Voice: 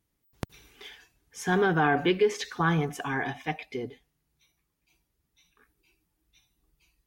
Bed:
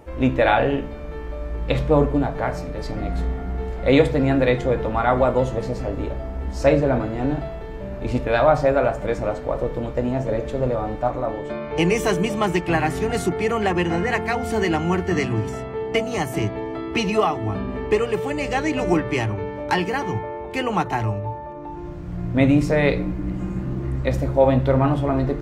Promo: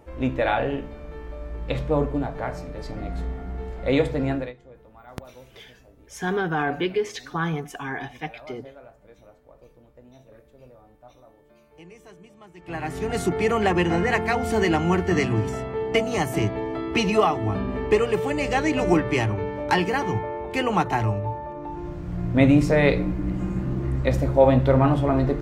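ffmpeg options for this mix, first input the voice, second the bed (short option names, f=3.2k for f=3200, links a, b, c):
-filter_complex "[0:a]adelay=4750,volume=-1dB[a];[1:a]volume=22dB,afade=t=out:st=4.3:d=0.23:silence=0.0794328,afade=t=in:st=12.56:d=0.85:silence=0.0421697[b];[a][b]amix=inputs=2:normalize=0"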